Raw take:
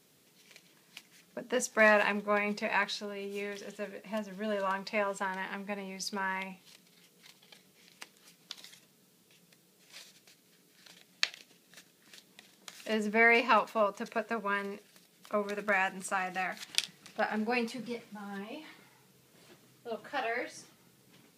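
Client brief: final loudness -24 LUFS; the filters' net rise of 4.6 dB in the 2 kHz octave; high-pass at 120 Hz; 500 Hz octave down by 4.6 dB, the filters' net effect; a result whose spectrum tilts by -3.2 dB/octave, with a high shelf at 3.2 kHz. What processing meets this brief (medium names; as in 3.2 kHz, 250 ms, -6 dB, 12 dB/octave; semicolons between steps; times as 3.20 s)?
high-pass 120 Hz; peaking EQ 500 Hz -6.5 dB; peaking EQ 2 kHz +7.5 dB; treble shelf 3.2 kHz -6 dB; trim +5.5 dB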